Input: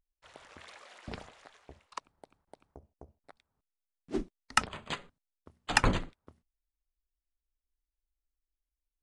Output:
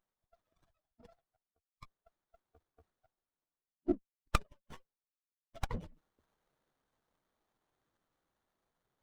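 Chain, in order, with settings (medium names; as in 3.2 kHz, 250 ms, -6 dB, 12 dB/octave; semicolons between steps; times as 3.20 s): expander on every frequency bin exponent 3; Doppler pass-by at 3.50 s, 26 m/s, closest 3.8 m; reverse; upward compressor, threshold -56 dBFS; reverse; sliding maximum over 17 samples; trim +14 dB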